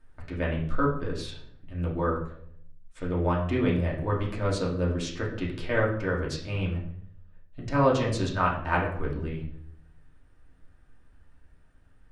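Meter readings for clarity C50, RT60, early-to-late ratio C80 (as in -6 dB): 6.5 dB, 0.65 s, 10.5 dB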